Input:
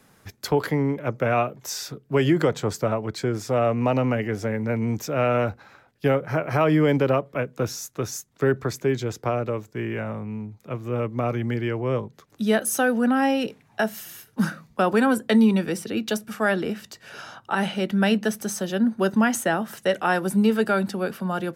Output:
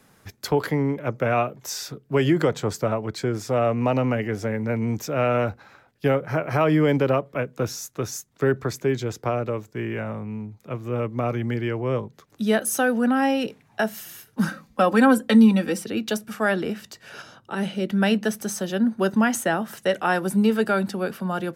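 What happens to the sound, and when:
14.48–15.83 s: comb 3.8 ms
17.22–17.90 s: FFT filter 510 Hz 0 dB, 770 Hz -9 dB, 5.1 kHz -3 dB

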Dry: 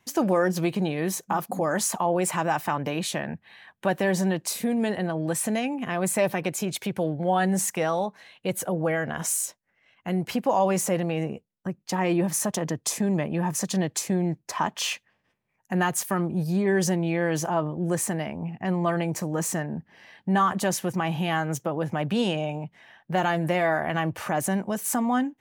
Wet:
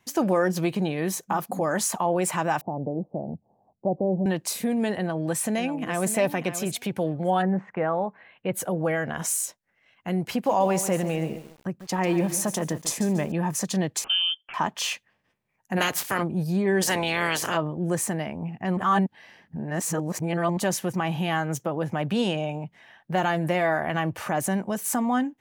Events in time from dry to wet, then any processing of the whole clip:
2.61–4.26 s: steep low-pass 790 Hz 48 dB/octave
4.98–6.12 s: echo throw 590 ms, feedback 10%, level -10.5 dB
7.41–8.53 s: low-pass 1.6 kHz -> 2.8 kHz 24 dB/octave
10.31–13.32 s: bit-crushed delay 143 ms, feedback 35%, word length 7-bit, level -12 dB
14.04–14.54 s: frequency inversion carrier 3.3 kHz
15.76–16.22 s: spectral peaks clipped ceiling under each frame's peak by 23 dB
16.81–17.56 s: spectral peaks clipped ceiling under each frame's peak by 26 dB
18.77–20.57 s: reverse

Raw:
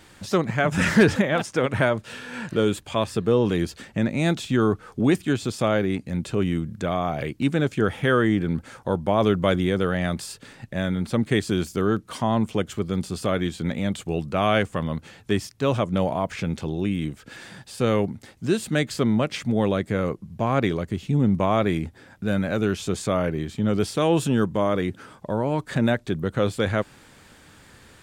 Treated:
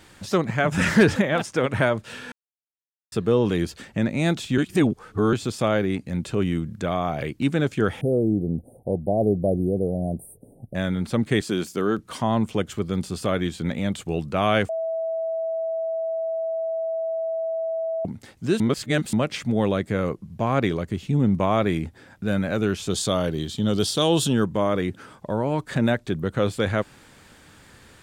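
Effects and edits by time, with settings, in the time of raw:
2.32–3.12 s: mute
4.58–5.33 s: reverse
8.01–10.75 s: Chebyshev band-stop 730–9400 Hz, order 5
11.41–11.99 s: high-pass 180 Hz
14.69–18.05 s: bleep 653 Hz -23.5 dBFS
18.60–19.13 s: reverse
22.90–24.33 s: resonant high shelf 2.8 kHz +6 dB, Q 3

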